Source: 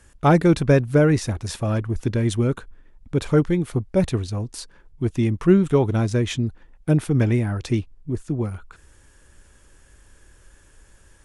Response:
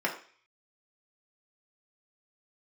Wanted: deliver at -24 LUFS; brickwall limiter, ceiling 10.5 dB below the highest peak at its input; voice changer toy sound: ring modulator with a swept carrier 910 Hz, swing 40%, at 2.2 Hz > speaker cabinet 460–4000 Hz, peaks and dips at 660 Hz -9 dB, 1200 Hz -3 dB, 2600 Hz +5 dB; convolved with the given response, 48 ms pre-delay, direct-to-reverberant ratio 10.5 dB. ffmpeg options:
-filter_complex "[0:a]alimiter=limit=-15dB:level=0:latency=1,asplit=2[a][b];[1:a]atrim=start_sample=2205,adelay=48[c];[b][c]afir=irnorm=-1:irlink=0,volume=-20dB[d];[a][d]amix=inputs=2:normalize=0,aeval=exprs='val(0)*sin(2*PI*910*n/s+910*0.4/2.2*sin(2*PI*2.2*n/s))':c=same,highpass=460,equalizer=f=660:t=q:w=4:g=-9,equalizer=f=1.2k:t=q:w=4:g=-3,equalizer=f=2.6k:t=q:w=4:g=5,lowpass=f=4k:w=0.5412,lowpass=f=4k:w=1.3066,volume=6dB"

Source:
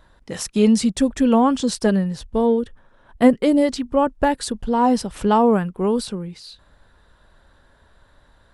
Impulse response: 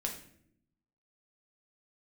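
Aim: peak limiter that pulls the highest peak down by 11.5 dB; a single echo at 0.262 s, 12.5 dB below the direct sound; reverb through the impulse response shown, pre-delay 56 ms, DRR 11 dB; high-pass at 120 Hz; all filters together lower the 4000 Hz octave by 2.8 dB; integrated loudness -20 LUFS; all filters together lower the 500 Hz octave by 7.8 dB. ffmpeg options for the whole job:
-filter_complex "[0:a]highpass=120,equalizer=f=500:t=o:g=-9,equalizer=f=4k:t=o:g=-3.5,alimiter=limit=-16dB:level=0:latency=1,aecho=1:1:262:0.237,asplit=2[a][b];[1:a]atrim=start_sample=2205,adelay=56[c];[b][c]afir=irnorm=-1:irlink=0,volume=-12.5dB[d];[a][d]amix=inputs=2:normalize=0,volume=4.5dB"

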